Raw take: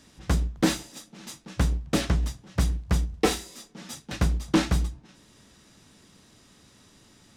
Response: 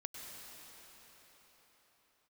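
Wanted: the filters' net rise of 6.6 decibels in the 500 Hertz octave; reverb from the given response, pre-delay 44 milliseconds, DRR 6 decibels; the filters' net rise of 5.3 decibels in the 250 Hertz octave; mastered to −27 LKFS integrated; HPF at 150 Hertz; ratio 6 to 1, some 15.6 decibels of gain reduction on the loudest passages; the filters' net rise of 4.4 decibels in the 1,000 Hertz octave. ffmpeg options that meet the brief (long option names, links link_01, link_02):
-filter_complex "[0:a]highpass=150,equalizer=frequency=250:width_type=o:gain=6,equalizer=frequency=500:width_type=o:gain=5.5,equalizer=frequency=1000:width_type=o:gain=3.5,acompressor=threshold=-28dB:ratio=6,asplit=2[link_01][link_02];[1:a]atrim=start_sample=2205,adelay=44[link_03];[link_02][link_03]afir=irnorm=-1:irlink=0,volume=-4.5dB[link_04];[link_01][link_04]amix=inputs=2:normalize=0,volume=9dB"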